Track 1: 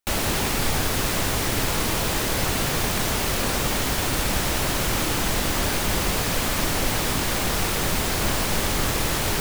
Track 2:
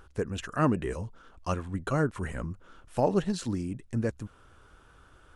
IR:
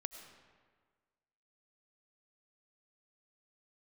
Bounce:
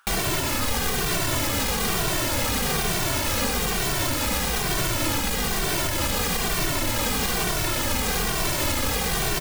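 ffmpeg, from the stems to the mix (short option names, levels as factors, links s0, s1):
-filter_complex "[0:a]aeval=exprs='0.355*sin(PI/2*3.55*val(0)/0.355)':c=same,asplit=2[s0][s1];[s1]adelay=2.1,afreqshift=-1.1[s2];[s0][s2]amix=inputs=2:normalize=1,volume=0.841[s3];[1:a]highpass=f=1000:w=0.5412,highpass=f=1000:w=1.3066,volume=1.19[s4];[s3][s4]amix=inputs=2:normalize=0,alimiter=limit=0.188:level=0:latency=1:release=440"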